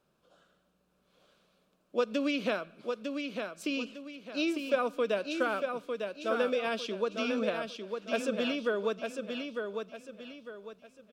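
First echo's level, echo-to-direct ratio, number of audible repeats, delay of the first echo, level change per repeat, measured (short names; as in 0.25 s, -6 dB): -5.5 dB, -5.0 dB, 4, 0.902 s, -9.0 dB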